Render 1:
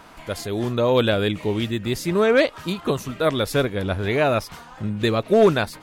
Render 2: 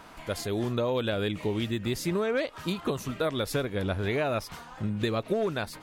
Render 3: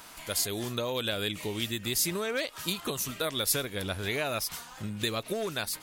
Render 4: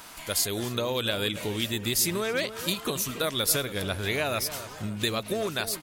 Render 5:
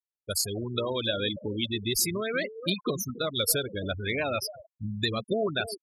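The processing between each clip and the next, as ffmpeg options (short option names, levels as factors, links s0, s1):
-af "acompressor=threshold=0.0891:ratio=12,volume=0.708"
-af "crystalizer=i=6.5:c=0,volume=0.501"
-filter_complex "[0:a]asplit=2[s0][s1];[s1]adelay=280,lowpass=f=1400:p=1,volume=0.282,asplit=2[s2][s3];[s3]adelay=280,lowpass=f=1400:p=1,volume=0.5,asplit=2[s4][s5];[s5]adelay=280,lowpass=f=1400:p=1,volume=0.5,asplit=2[s6][s7];[s7]adelay=280,lowpass=f=1400:p=1,volume=0.5,asplit=2[s8][s9];[s9]adelay=280,lowpass=f=1400:p=1,volume=0.5[s10];[s0][s2][s4][s6][s8][s10]amix=inputs=6:normalize=0,volume=1.41"
-af "agate=range=0.0224:threshold=0.0158:ratio=3:detection=peak,afftfilt=real='re*gte(hypot(re,im),0.0631)':imag='im*gte(hypot(re,im),0.0631)':win_size=1024:overlap=0.75,aphaser=in_gain=1:out_gain=1:delay=3.8:decay=0.26:speed=0.36:type=sinusoidal"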